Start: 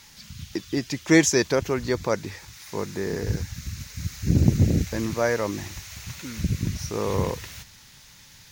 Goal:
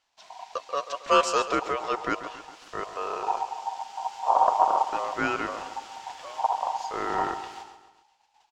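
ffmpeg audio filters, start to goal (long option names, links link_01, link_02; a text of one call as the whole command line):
ffmpeg -i in.wav -af "lowpass=7200,agate=range=-19dB:threshold=-48dB:ratio=16:detection=peak,asubboost=boost=5.5:cutoff=55,aeval=exprs='val(0)*sin(2*PI*850*n/s)':channel_layout=same,bass=frequency=250:gain=-5,treble=frequency=4000:gain=-6,aecho=1:1:136|272|408|544|680:0.211|0.112|0.0594|0.0315|0.0167" out.wav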